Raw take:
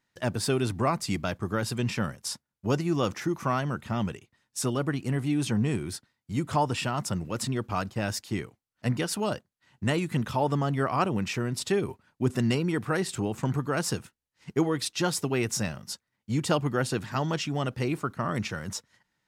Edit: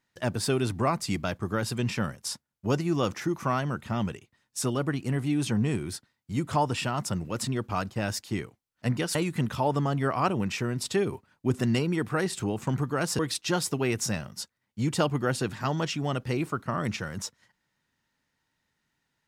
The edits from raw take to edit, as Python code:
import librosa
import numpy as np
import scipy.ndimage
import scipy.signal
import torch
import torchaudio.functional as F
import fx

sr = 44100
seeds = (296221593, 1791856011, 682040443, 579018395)

y = fx.edit(x, sr, fx.cut(start_s=9.15, length_s=0.76),
    fx.cut(start_s=13.95, length_s=0.75), tone=tone)